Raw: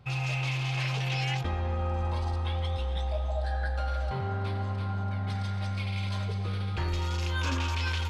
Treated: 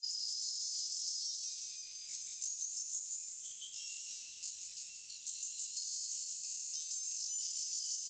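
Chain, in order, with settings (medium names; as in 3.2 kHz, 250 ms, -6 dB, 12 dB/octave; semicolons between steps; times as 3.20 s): inverse Chebyshev high-pass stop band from 610 Hz, stop band 80 dB; reverberation RT60 0.40 s, pre-delay 33 ms, DRR 8.5 dB; LPC vocoder at 8 kHz pitch kept; distance through air 87 m; pitch shift +11.5 st; frequency-shifting echo 175 ms, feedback 31%, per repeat +58 Hz, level -8 dB; in parallel at -4.5 dB: bit crusher 5-bit; on the sum: compression 6:1, threshold -54 dBFS, peak gain reduction 11 dB; trim +16.5 dB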